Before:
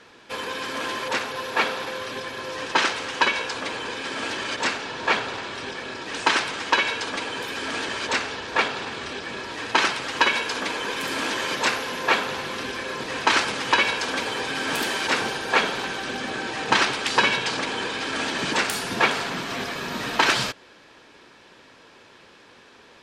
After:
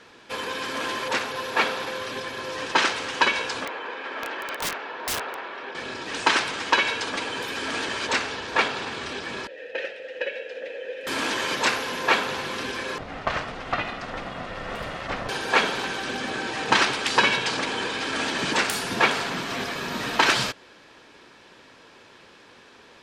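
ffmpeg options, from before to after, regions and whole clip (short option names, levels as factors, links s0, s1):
-filter_complex "[0:a]asettb=1/sr,asplit=3[s0][s1][s2];[s0]atrim=end=3.654[s3];[s1]atrim=start=3.65:end=5.75,asetpts=PTS-STARTPTS,afade=t=in:d=0.004:c=qsin,afade=t=out:st=2.096:d=0.004:c=qsin,highpass=430,lowpass=2100,aeval=exprs='(mod(11.9*val(0)+1,2)-1)/11.9':c=same[s4];[s2]atrim=start=5.746[s5];[s3][s4]acrossfade=d=0.004:c1=hsin:c2=qsin[s6];[s6][s5]acrossfade=d=0.004:c1=qsin:c2=hsin,asettb=1/sr,asplit=3[s7][s8][s9];[s7]atrim=end=9.474[s10];[s8]atrim=start=9.47:end=11.07,asetpts=PTS-STARTPTS,afade=t=in:d=0.004:c=qsin,afade=t=out:st=1.596:d=0.004:c=qsin,asplit=3[s11][s12][s13];[s11]bandpass=f=530:t=q:w=8,volume=1[s14];[s12]bandpass=f=1840:t=q:w=8,volume=0.501[s15];[s13]bandpass=f=2480:t=q:w=8,volume=0.355[s16];[s14][s15][s16]amix=inputs=3:normalize=0,equalizer=f=510:w=2.5:g=6.5,bandreject=f=4600:w=26[s17];[s9]atrim=start=11.066[s18];[s10][s17]acrossfade=d=0.004:c1=hsin:c2=qsin[s19];[s19][s18]acrossfade=d=0.004:c1=qsin:c2=hsin,asettb=1/sr,asplit=3[s20][s21][s22];[s20]atrim=end=12.984[s23];[s21]atrim=start=12.98:end=15.29,asetpts=PTS-STARTPTS,afade=t=in:d=0.004:c=qsin,afade=t=out:st=2.306:d=0.004:c=qsin,lowpass=f=1100:p=1,aeval=exprs='val(0)*sin(2*PI*240*n/s)':c=same[s24];[s22]atrim=start=15.286[s25];[s23][s24]acrossfade=d=0.004:c1=hsin:c2=qsin[s26];[s26][s25]acrossfade=d=0.004:c1=qsin:c2=hsin"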